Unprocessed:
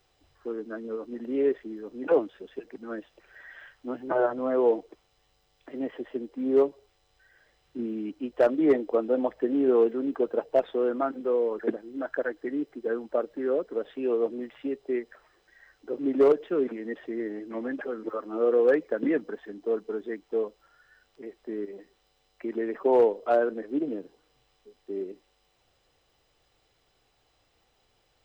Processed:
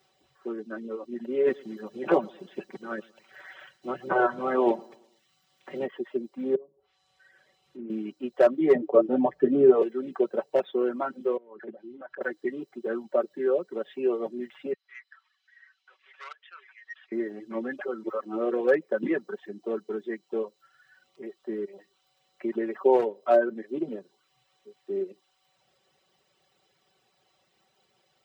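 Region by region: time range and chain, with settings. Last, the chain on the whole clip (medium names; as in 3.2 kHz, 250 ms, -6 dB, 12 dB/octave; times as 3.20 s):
1.46–5.85 s: spectral peaks clipped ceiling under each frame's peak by 12 dB + feedback delay 112 ms, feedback 43%, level -13.5 dB
6.55–7.90 s: low-pass that closes with the level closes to 450 Hz, closed at -22.5 dBFS + compression 2.5:1, threshold -42 dBFS + doubling 47 ms -14 dB
8.75–9.82 s: tilt EQ -3 dB/octave + comb 6.9 ms, depth 75%
11.37–12.21 s: compression 3:1, threshold -40 dBFS + distance through air 210 m
14.73–17.12 s: inverse Chebyshev high-pass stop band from 230 Hz, stop band 80 dB + distance through air 130 m + transformer saturation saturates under 1.6 kHz
whole clip: high-pass 93 Hz 24 dB/octave; reverb removal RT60 0.66 s; comb 5.3 ms, depth 72%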